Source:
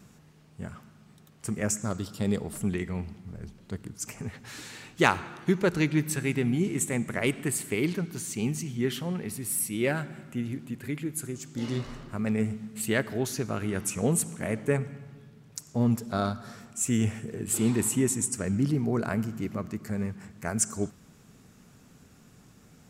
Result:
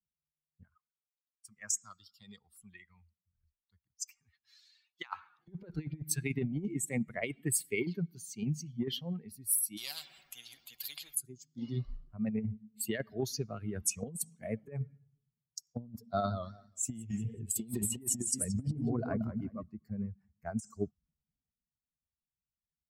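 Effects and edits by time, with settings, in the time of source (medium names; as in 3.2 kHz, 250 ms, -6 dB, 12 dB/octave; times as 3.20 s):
0.63–5.39 s: resonant low shelf 760 Hz -9.5 dB, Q 1.5
9.77–11.15 s: spectrum-flattening compressor 4:1
16.07–19.63 s: modulated delay 183 ms, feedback 40%, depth 155 cents, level -5 dB
whole clip: expander on every frequency bin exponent 2; compressor with a negative ratio -34 dBFS, ratio -0.5; three bands expanded up and down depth 40%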